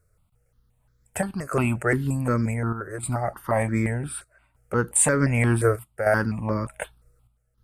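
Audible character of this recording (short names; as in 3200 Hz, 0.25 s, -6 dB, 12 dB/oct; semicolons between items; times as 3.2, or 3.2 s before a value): chopped level 0.66 Hz, depth 60%, duty 80%; notches that jump at a steady rate 5.7 Hz 860–2800 Hz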